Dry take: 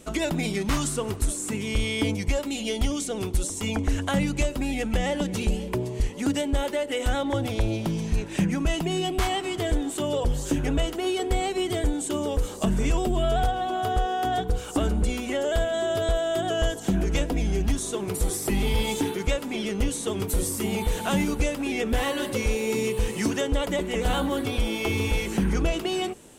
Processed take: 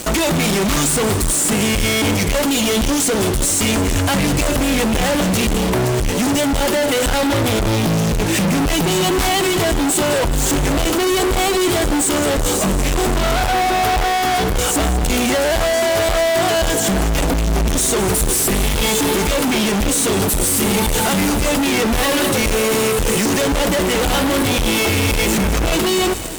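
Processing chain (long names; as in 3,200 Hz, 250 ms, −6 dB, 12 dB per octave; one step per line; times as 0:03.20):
high-shelf EQ 5,200 Hz +5.5 dB
fuzz pedal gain 46 dB, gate −46 dBFS
echo with a time of its own for lows and highs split 1,100 Hz, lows 561 ms, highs 209 ms, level −14 dB
level −2.5 dB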